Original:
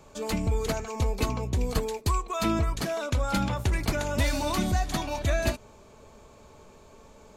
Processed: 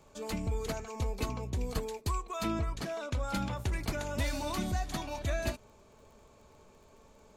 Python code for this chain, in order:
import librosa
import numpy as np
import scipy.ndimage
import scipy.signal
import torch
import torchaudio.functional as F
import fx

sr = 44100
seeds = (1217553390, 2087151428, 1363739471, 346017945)

y = fx.dmg_crackle(x, sr, seeds[0], per_s=27.0, level_db=-46.0)
y = fx.high_shelf(y, sr, hz=10000.0, db=-9.0, at=(2.47, 3.23))
y = F.gain(torch.from_numpy(y), -7.0).numpy()